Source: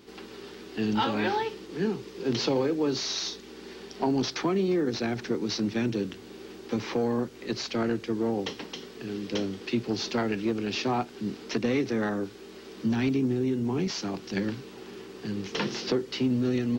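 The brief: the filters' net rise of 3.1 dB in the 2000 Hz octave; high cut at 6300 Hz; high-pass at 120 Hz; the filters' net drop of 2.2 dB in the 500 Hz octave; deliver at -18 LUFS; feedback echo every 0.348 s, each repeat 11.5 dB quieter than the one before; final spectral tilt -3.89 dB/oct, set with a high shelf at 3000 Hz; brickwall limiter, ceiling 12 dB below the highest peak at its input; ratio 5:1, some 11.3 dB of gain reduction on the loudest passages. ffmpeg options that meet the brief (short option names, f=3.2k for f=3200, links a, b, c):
-af "highpass=120,lowpass=6.3k,equalizer=f=500:t=o:g=-3,equalizer=f=2k:t=o:g=7.5,highshelf=f=3k:g=-9,acompressor=threshold=-36dB:ratio=5,alimiter=level_in=11dB:limit=-24dB:level=0:latency=1,volume=-11dB,aecho=1:1:348|696|1044:0.266|0.0718|0.0194,volume=25.5dB"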